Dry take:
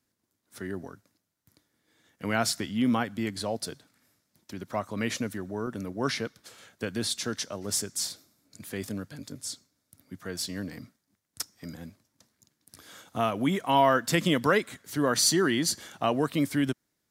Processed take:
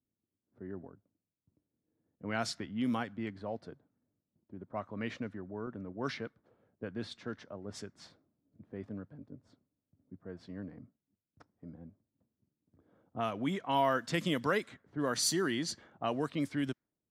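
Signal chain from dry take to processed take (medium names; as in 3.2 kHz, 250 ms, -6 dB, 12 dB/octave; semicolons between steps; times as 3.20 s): level-controlled noise filter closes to 430 Hz, open at -20 dBFS; trim -7.5 dB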